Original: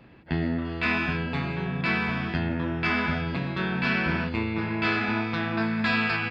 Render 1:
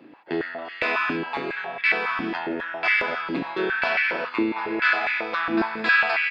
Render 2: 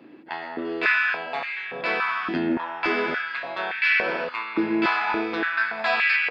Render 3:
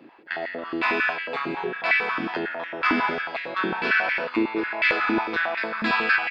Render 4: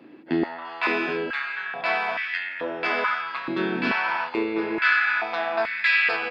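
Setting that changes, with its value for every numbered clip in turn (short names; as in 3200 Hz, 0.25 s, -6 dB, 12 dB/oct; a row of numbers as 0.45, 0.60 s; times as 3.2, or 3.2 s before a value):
stepped high-pass, rate: 7.3, 3.5, 11, 2.3 Hz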